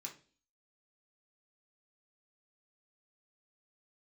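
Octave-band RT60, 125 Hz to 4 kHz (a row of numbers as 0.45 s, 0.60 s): 0.45 s, 0.55 s, 0.45 s, 0.35 s, 0.40 s, 0.45 s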